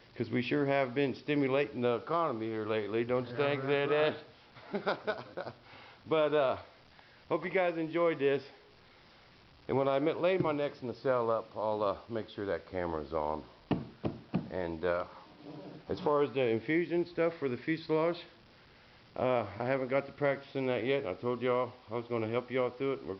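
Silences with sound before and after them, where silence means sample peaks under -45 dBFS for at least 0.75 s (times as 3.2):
8.5–9.69
18.26–19.16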